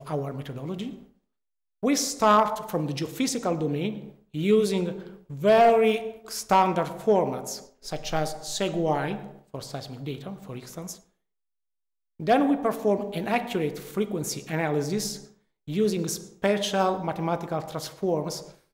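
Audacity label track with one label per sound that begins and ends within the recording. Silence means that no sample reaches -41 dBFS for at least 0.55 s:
1.830000	10.960000	sound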